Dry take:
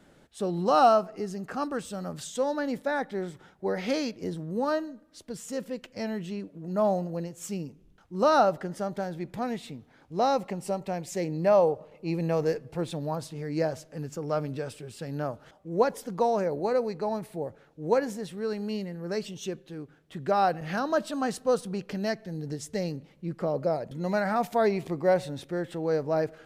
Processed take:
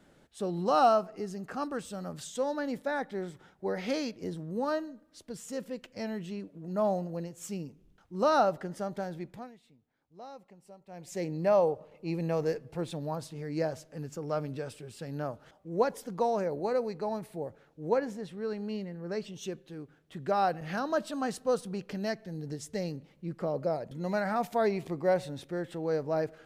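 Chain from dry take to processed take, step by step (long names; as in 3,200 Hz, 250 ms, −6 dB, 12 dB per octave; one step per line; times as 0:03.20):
0:09.17–0:11.22: duck −18.5 dB, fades 0.35 s
0:17.89–0:19.34: high-shelf EQ 5,900 Hz −11 dB
level −3.5 dB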